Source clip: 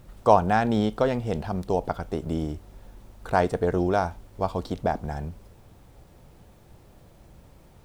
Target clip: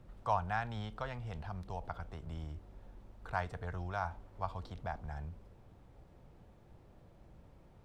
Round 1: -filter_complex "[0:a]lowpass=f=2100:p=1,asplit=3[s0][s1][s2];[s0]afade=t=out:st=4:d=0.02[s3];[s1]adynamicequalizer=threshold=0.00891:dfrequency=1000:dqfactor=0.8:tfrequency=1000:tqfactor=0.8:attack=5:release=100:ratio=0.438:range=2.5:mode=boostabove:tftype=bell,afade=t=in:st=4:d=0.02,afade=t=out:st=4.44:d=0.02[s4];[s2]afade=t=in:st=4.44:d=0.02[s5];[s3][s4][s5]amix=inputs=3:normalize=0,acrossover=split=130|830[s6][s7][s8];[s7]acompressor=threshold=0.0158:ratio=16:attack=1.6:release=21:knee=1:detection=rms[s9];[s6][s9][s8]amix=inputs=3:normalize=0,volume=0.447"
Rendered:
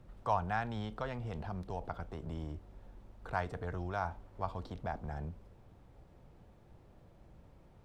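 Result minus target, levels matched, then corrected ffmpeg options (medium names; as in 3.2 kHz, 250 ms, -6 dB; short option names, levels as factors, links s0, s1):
compression: peak gain reduction -11 dB
-filter_complex "[0:a]lowpass=f=2100:p=1,asplit=3[s0][s1][s2];[s0]afade=t=out:st=4:d=0.02[s3];[s1]adynamicequalizer=threshold=0.00891:dfrequency=1000:dqfactor=0.8:tfrequency=1000:tqfactor=0.8:attack=5:release=100:ratio=0.438:range=2.5:mode=boostabove:tftype=bell,afade=t=in:st=4:d=0.02,afade=t=out:st=4.44:d=0.02[s4];[s2]afade=t=in:st=4.44:d=0.02[s5];[s3][s4][s5]amix=inputs=3:normalize=0,acrossover=split=130|830[s6][s7][s8];[s7]acompressor=threshold=0.00422:ratio=16:attack=1.6:release=21:knee=1:detection=rms[s9];[s6][s9][s8]amix=inputs=3:normalize=0,volume=0.447"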